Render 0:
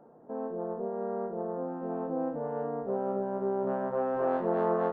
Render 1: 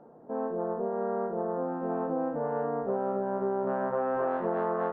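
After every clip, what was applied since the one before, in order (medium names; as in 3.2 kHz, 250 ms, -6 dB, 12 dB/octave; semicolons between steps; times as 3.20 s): dynamic bell 1.5 kHz, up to +6 dB, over -46 dBFS, Q 0.73; compression, threshold -28 dBFS, peak gain reduction 7.5 dB; distance through air 120 m; trim +3 dB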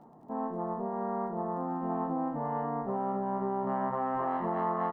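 comb 1 ms, depth 66%; crackle 22 per s -59 dBFS; trim -1 dB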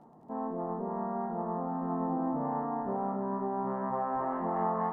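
low-pass that closes with the level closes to 1.8 kHz, closed at -29.5 dBFS; two-band feedback delay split 660 Hz, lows 172 ms, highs 297 ms, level -6.5 dB; trim -1.5 dB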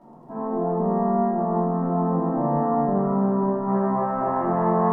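reverberation RT60 1.3 s, pre-delay 3 ms, DRR -8 dB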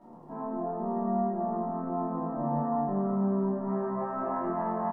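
compression 1.5:1, threshold -35 dBFS, peak gain reduction 7 dB; flange 0.63 Hz, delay 9.6 ms, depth 3.7 ms, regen -48%; doubling 26 ms -4.5 dB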